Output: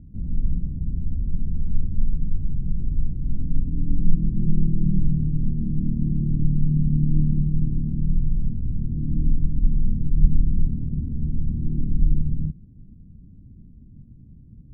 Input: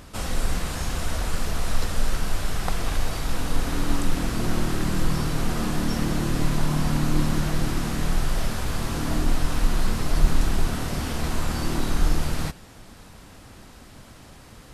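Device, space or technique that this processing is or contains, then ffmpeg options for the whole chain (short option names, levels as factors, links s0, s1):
the neighbour's flat through the wall: -filter_complex "[0:a]asettb=1/sr,asplit=3[s0][s1][s2];[s0]atrim=end=3.974[s3];[s1]atrim=start=3.97:end=4.99,asetpts=PTS-STARTPTS,afade=t=in:d=0.004:c=qsin,afade=t=out:st=1.016:d=0.004:c=qsin,aecho=1:1:5.7:0.61,atrim=end_sample=44982[s4];[s2]atrim=start=4.986[s5];[s3][s4]acrossfade=d=0.004:c1=hsin:c2=qsin[s6];[s6][s5]acrossfade=d=0.004:c1=qsin:c2=hsin,lowpass=f=230:w=0.5412,lowpass=f=230:w=1.3066,equalizer=f=150:t=o:w=0.43:g=3,volume=1.33"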